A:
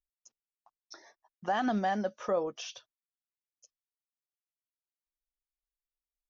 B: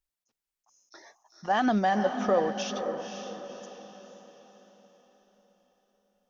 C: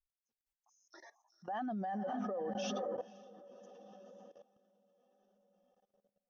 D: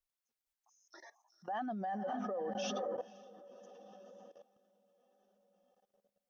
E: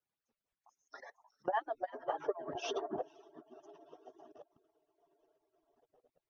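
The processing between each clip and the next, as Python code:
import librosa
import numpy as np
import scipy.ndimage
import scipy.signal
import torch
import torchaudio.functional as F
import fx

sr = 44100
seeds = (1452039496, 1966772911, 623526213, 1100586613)

y1 = fx.echo_diffused(x, sr, ms=518, feedback_pct=44, wet_db=-7.5)
y1 = fx.attack_slew(y1, sr, db_per_s=430.0)
y1 = F.gain(torch.from_numpy(y1), 5.0).numpy()
y2 = fx.spec_expand(y1, sr, power=1.5)
y2 = fx.level_steps(y2, sr, step_db=18)
y2 = F.gain(torch.from_numpy(y2), -2.0).numpy()
y3 = fx.low_shelf(y2, sr, hz=250.0, db=-6.0)
y3 = F.gain(torch.from_numpy(y3), 1.5).numpy()
y4 = fx.hpss_only(y3, sr, part='percussive')
y4 = fx.lowpass(y4, sr, hz=1100.0, slope=6)
y4 = F.gain(torch.from_numpy(y4), 11.5).numpy()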